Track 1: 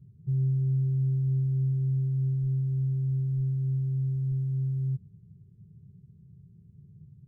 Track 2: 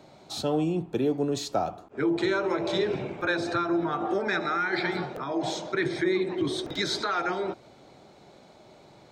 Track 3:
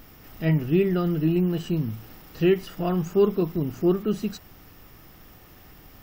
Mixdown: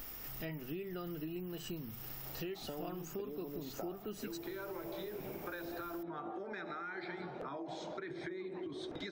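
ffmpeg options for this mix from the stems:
-filter_complex "[0:a]volume=-14.5dB[a];[1:a]lowpass=f=2.6k:p=1,acompressor=threshold=-33dB:ratio=6,adelay=2250,volume=1dB[b];[2:a]highshelf=f=5.5k:g=9,volume=-1dB[c];[a][c]amix=inputs=2:normalize=0,equalizer=f=140:t=o:w=1.9:g=-8,alimiter=limit=-20.5dB:level=0:latency=1:release=327,volume=0dB[d];[b][d]amix=inputs=2:normalize=0,equalizer=f=120:w=4.4:g=-7.5,acompressor=threshold=-42dB:ratio=4"

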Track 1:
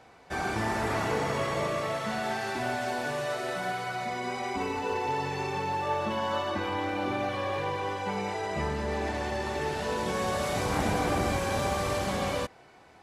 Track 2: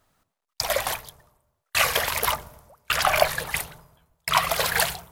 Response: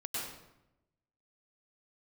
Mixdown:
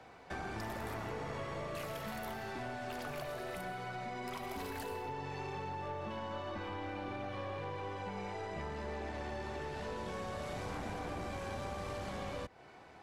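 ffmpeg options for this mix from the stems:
-filter_complex "[0:a]highshelf=f=6.6k:g=-8.5,volume=0.5dB[a];[1:a]volume=-16dB,asplit=2[b][c];[c]volume=-10dB[d];[2:a]atrim=start_sample=2205[e];[d][e]afir=irnorm=-1:irlink=0[f];[a][b][f]amix=inputs=3:normalize=0,acrossover=split=85|440[g][h][i];[g]acompressor=threshold=-48dB:ratio=4[j];[h]acompressor=threshold=-45dB:ratio=4[k];[i]acompressor=threshold=-42dB:ratio=4[l];[j][k][l]amix=inputs=3:normalize=0,aeval=exprs='(tanh(39.8*val(0)+0.35)-tanh(0.35))/39.8':c=same"

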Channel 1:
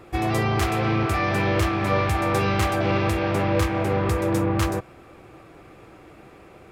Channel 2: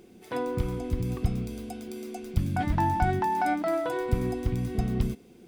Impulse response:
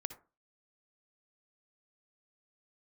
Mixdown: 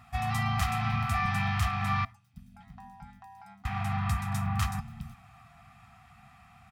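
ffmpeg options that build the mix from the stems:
-filter_complex "[0:a]volume=-8.5dB,asplit=3[a][b][c];[a]atrim=end=2.05,asetpts=PTS-STARTPTS,afade=t=out:st=2.046:d=0.004:c=hsin[d];[b]atrim=start=2.05:end=3.65,asetpts=PTS-STARTPTS,volume=0[e];[c]atrim=start=3.65,asetpts=PTS-STARTPTS,afade=t=in:d=0.004:c=hsin[f];[d][e][f]concat=n=3:v=0:a=1,asplit=2[g][h];[h]volume=-9dB[i];[1:a]aeval=exprs='val(0)*sin(2*PI*100*n/s)':c=same,volume=-1dB,afade=t=out:st=1.11:d=0.4:silence=0.298538,afade=t=in:st=4.02:d=0.54:silence=0.398107[j];[2:a]atrim=start_sample=2205[k];[i][k]afir=irnorm=-1:irlink=0[l];[g][j][l]amix=inputs=3:normalize=0,highpass=48,aecho=1:1:1.6:0.44,afftfilt=real='re*(1-between(b*sr/4096,260,670))':imag='im*(1-between(b*sr/4096,260,670))':win_size=4096:overlap=0.75"

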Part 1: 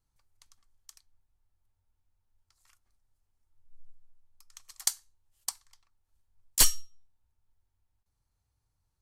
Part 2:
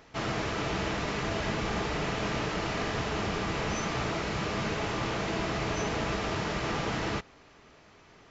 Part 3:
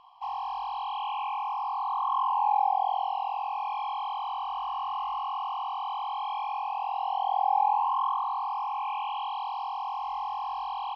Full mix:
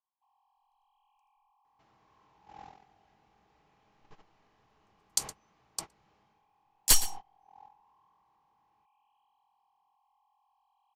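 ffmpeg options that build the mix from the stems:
-filter_complex "[0:a]afwtdn=0.00631,adelay=300,volume=-0.5dB,asplit=2[a][b];[b]volume=-15.5dB[c];[1:a]acompressor=threshold=-38dB:ratio=6,adelay=1650,volume=-6.5dB,afade=t=out:st=6.15:d=0.32:silence=0.266073[d];[2:a]volume=-17.5dB,asplit=2[e][f];[f]volume=-17dB[g];[c][g]amix=inputs=2:normalize=0,aecho=0:1:116:1[h];[a][d][e][h]amix=inputs=4:normalize=0,agate=range=-24dB:threshold=-37dB:ratio=16:detection=peak"

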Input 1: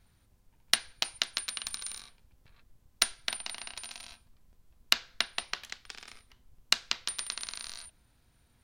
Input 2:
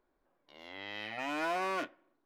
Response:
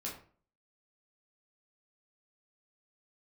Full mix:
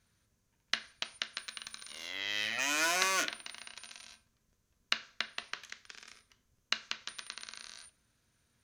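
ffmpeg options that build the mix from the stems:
-filter_complex "[0:a]acrossover=split=4200[a][b];[b]acompressor=threshold=-48dB:ratio=4:attack=1:release=60[c];[a][c]amix=inputs=2:normalize=0,highpass=f=130:p=1,volume=-5.5dB,asplit=2[d][e];[e]volume=-10.5dB[f];[1:a]acontrast=31,crystalizer=i=9:c=0,adelay=1400,volume=-9.5dB,asplit=2[g][h];[h]volume=-10.5dB[i];[2:a]atrim=start_sample=2205[j];[f][i]amix=inputs=2:normalize=0[k];[k][j]afir=irnorm=-1:irlink=0[l];[d][g][l]amix=inputs=3:normalize=0,equalizer=f=315:t=o:w=0.33:g=-3,equalizer=f=800:t=o:w=0.33:g=-9,equalizer=f=1.6k:t=o:w=0.33:g=3,equalizer=f=6.3k:t=o:w=0.33:g=9,equalizer=f=16k:t=o:w=0.33:g=-6"

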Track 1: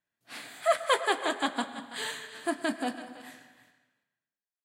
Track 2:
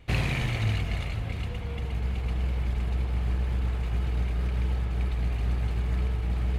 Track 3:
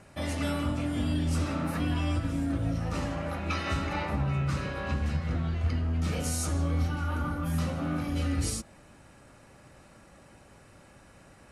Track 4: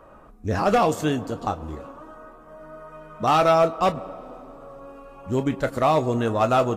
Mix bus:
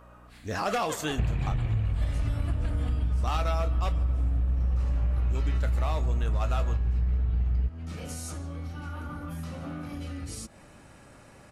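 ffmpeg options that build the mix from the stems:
-filter_complex "[0:a]volume=-13dB[a];[1:a]lowpass=3.3k,aemphasis=mode=reproduction:type=bsi,bandreject=f=2.1k:w=12,adelay=1100,volume=-3dB[b];[2:a]acompressor=threshold=-36dB:ratio=10,adelay=1850,volume=2.5dB[c];[3:a]tiltshelf=f=1.1k:g=-5.5,aeval=exprs='val(0)+0.00398*(sin(2*PI*60*n/s)+sin(2*PI*2*60*n/s)/2+sin(2*PI*3*60*n/s)/3+sin(2*PI*4*60*n/s)/4+sin(2*PI*5*60*n/s)/5)':c=same,volume=-4.5dB[d];[a][b][c][d]amix=inputs=4:normalize=0,acompressor=threshold=-24dB:ratio=5"

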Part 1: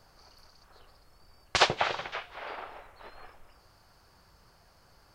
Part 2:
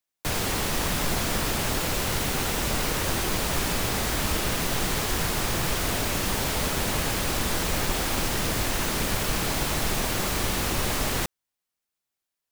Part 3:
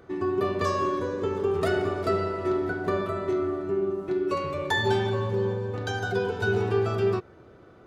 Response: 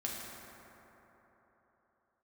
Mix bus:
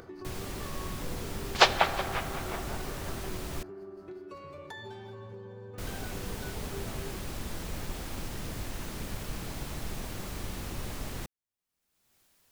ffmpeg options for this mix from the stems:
-filter_complex "[0:a]agate=range=-33dB:threshold=-52dB:ratio=3:detection=peak,aeval=exprs='val(0)*pow(10,-19*(0.5-0.5*cos(2*PI*5.5*n/s))/20)':c=same,volume=2dB,asplit=2[a][b];[b]volume=-9dB[c];[1:a]lowshelf=f=330:g=8,volume=-15.5dB,asplit=3[d][e][f];[d]atrim=end=3.63,asetpts=PTS-STARTPTS,afade=t=out:st=3.626:d=0.004:c=hsin[g];[e]atrim=start=3.63:end=5.78,asetpts=PTS-STARTPTS,volume=0[h];[f]atrim=start=5.78,asetpts=PTS-STARTPTS,afade=t=in:d=0.004:c=hsin[i];[g][h][i]concat=n=3:v=0:a=1[j];[2:a]acompressor=threshold=-36dB:ratio=3,volume=-10.5dB,asplit=2[k][l];[l]volume=-13dB[m];[3:a]atrim=start_sample=2205[n];[c][m]amix=inputs=2:normalize=0[o];[o][n]afir=irnorm=-1:irlink=0[p];[a][j][k][p]amix=inputs=4:normalize=0,acompressor=mode=upward:threshold=-41dB:ratio=2.5"

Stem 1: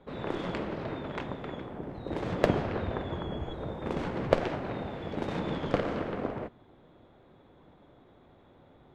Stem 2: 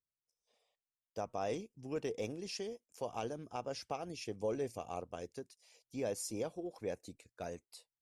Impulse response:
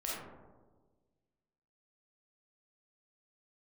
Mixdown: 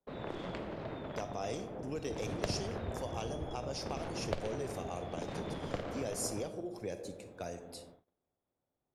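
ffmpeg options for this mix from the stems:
-filter_complex "[0:a]equalizer=f=650:t=o:w=0.72:g=3.5,volume=-5dB,asplit=2[a][b];[b]volume=-23dB[c];[1:a]volume=2.5dB,asplit=2[d][e];[e]volume=-8.5dB[f];[2:a]atrim=start_sample=2205[g];[c][f]amix=inputs=2:normalize=0[h];[h][g]afir=irnorm=-1:irlink=0[i];[a][d][i]amix=inputs=3:normalize=0,agate=range=-27dB:threshold=-55dB:ratio=16:detection=peak,acrossover=split=130|3000[j][k][l];[k]acompressor=threshold=-41dB:ratio=2[m];[j][m][l]amix=inputs=3:normalize=0"

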